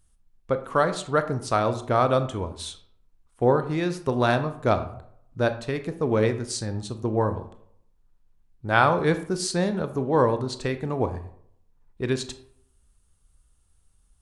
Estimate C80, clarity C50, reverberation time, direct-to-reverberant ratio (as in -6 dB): 15.5 dB, 12.5 dB, 0.65 s, 9.0 dB